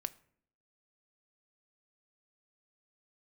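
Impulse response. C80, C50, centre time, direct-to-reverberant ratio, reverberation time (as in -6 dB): 23.5 dB, 20.0 dB, 2 ms, 13.0 dB, 0.60 s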